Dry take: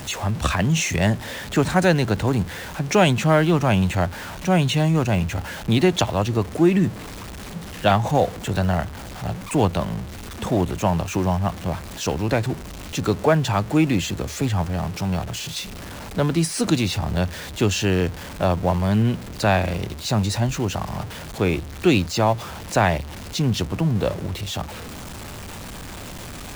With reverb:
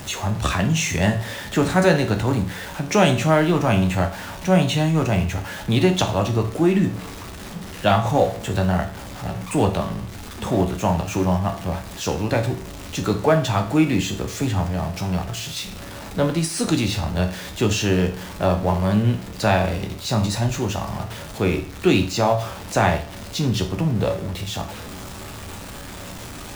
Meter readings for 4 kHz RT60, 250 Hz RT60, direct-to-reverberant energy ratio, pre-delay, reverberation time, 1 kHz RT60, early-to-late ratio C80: 0.45 s, 0.50 s, 4.0 dB, 11 ms, 0.45 s, 0.45 s, 15.0 dB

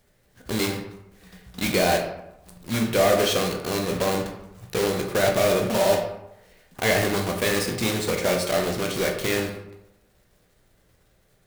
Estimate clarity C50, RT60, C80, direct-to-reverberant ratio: 6.5 dB, 0.90 s, 8.5 dB, 1.5 dB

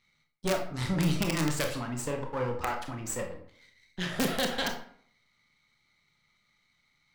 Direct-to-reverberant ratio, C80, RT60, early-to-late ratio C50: 3.0 dB, 11.5 dB, 0.55 s, 7.5 dB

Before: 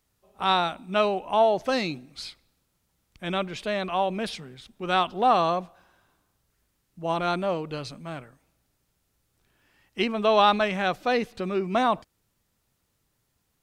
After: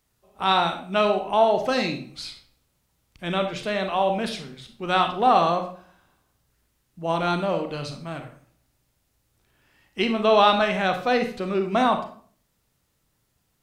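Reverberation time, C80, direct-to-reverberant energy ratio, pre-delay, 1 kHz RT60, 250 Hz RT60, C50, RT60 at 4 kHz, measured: 0.50 s, 13.0 dB, 5.5 dB, 29 ms, 0.45 s, 0.60 s, 9.0 dB, 0.40 s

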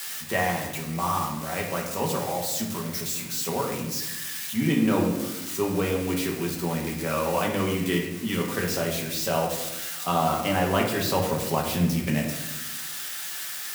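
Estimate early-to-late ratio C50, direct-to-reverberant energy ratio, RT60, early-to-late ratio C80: 5.0 dB, -1.5 dB, 0.95 s, 7.0 dB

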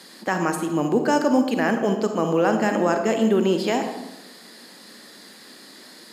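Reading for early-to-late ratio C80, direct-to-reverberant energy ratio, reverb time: 8.5 dB, 5.5 dB, 1.0 s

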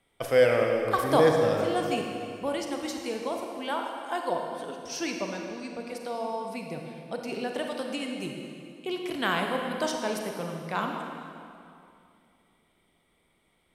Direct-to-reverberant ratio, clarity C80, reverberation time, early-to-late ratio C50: 2.0 dB, 4.0 dB, 2.6 s, 3.0 dB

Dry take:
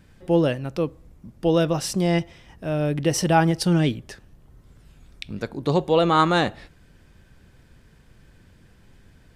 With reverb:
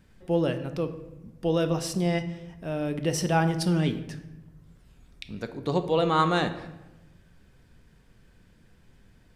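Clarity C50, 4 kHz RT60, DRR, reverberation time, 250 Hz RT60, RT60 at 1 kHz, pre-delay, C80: 11.5 dB, 0.70 s, 8.5 dB, 1.0 s, 1.3 s, 0.95 s, 4 ms, 13.5 dB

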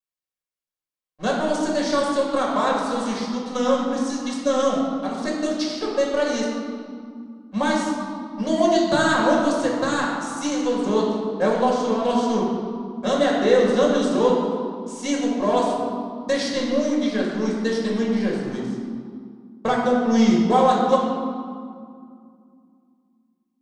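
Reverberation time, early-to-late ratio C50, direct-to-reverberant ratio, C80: 2.2 s, 1.0 dB, -4.5 dB, 2.5 dB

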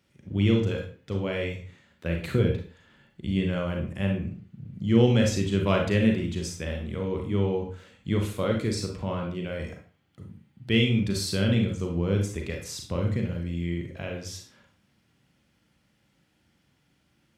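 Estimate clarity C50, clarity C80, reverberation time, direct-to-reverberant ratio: 5.0 dB, 11.0 dB, 0.40 s, 1.0 dB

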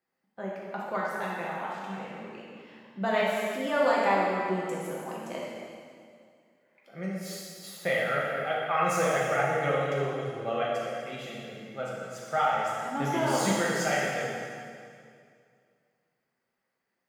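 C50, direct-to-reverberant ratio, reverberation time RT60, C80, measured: -2.0 dB, -6.0 dB, 2.2 s, 0.0 dB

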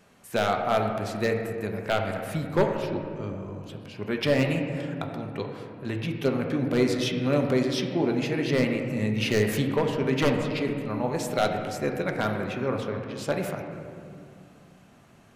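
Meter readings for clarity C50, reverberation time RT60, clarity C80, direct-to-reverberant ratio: 4.5 dB, 2.3 s, 5.5 dB, 2.0 dB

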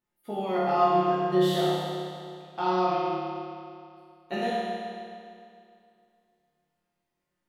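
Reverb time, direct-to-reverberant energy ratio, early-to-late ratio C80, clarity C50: 2.4 s, -9.5 dB, -1.5 dB, -4.0 dB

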